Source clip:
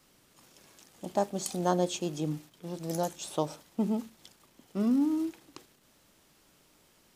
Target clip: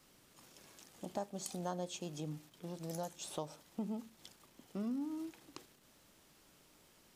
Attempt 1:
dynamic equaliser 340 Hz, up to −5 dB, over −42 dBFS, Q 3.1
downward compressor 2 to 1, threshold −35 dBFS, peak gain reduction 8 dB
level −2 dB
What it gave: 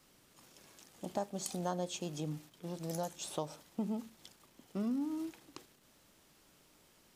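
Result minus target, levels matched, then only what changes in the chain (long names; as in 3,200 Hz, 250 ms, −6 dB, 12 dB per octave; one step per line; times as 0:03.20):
downward compressor: peak gain reduction −3.5 dB
change: downward compressor 2 to 1, threshold −42 dBFS, peak gain reduction 11.5 dB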